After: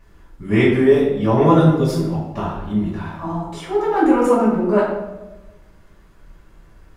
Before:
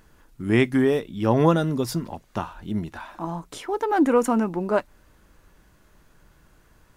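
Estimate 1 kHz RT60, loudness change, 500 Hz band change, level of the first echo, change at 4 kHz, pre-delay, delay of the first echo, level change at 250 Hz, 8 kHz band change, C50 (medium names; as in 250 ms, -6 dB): 0.95 s, +6.0 dB, +6.5 dB, no echo, +2.5 dB, 3 ms, no echo, +6.0 dB, -1.0 dB, 1.5 dB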